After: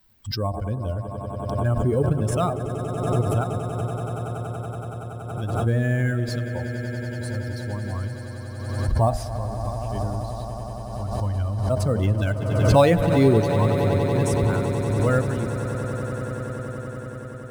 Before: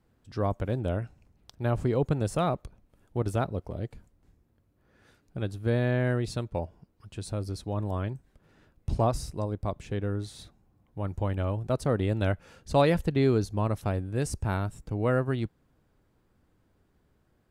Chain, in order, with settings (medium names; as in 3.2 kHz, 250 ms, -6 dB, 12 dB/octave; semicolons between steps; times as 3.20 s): expander on every frequency bin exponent 2; de-hum 78.24 Hz, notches 11; in parallel at -10 dB: sample-rate reducer 8.9 kHz, jitter 0%; on the sum: echo with a slow build-up 94 ms, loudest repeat 8, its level -14 dB; swell ahead of each attack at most 37 dB/s; trim +6 dB